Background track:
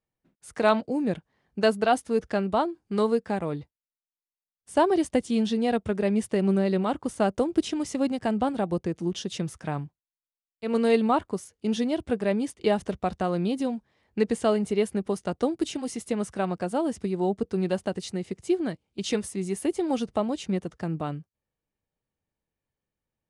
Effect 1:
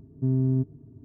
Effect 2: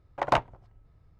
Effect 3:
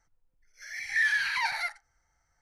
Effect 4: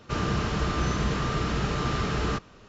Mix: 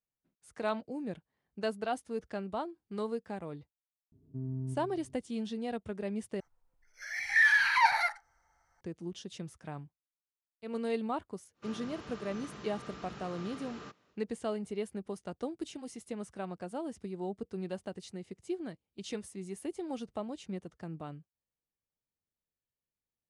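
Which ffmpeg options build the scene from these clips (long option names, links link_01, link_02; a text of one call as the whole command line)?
ffmpeg -i bed.wav -i cue0.wav -i cue1.wav -i cue2.wav -i cue3.wav -filter_complex "[0:a]volume=-12dB[link_01];[1:a]asplit=2[link_02][link_03];[link_03]adelay=131,lowpass=frequency=2000:poles=1,volume=-10dB,asplit=2[link_04][link_05];[link_05]adelay=131,lowpass=frequency=2000:poles=1,volume=0.5,asplit=2[link_06][link_07];[link_07]adelay=131,lowpass=frequency=2000:poles=1,volume=0.5,asplit=2[link_08][link_09];[link_09]adelay=131,lowpass=frequency=2000:poles=1,volume=0.5,asplit=2[link_10][link_11];[link_11]adelay=131,lowpass=frequency=2000:poles=1,volume=0.5[link_12];[link_02][link_04][link_06][link_08][link_10][link_12]amix=inputs=6:normalize=0[link_13];[3:a]equalizer=frequency=910:width=0.81:gain=10.5[link_14];[4:a]highpass=170[link_15];[link_01]asplit=2[link_16][link_17];[link_16]atrim=end=6.404[link_18];[link_14]atrim=end=2.41,asetpts=PTS-STARTPTS,volume=-2.5dB[link_19];[link_17]atrim=start=8.806[link_20];[link_13]atrim=end=1.04,asetpts=PTS-STARTPTS,volume=-14.5dB,afade=type=in:duration=0.004:curve=hsin,afade=type=out:start_time=1.036:duration=0.004:curve=hsin,adelay=4120[link_21];[link_15]atrim=end=2.68,asetpts=PTS-STARTPTS,volume=-17.5dB,afade=type=in:duration=0.1,afade=type=out:start_time=2.58:duration=0.1,adelay=11530[link_22];[link_18][link_19]acrossfade=duration=0.004:curve1=hsin:curve2=hsin[link_23];[link_23][link_20]acrossfade=duration=0.004:curve1=hsin:curve2=hsin[link_24];[link_24][link_21][link_22]amix=inputs=3:normalize=0" out.wav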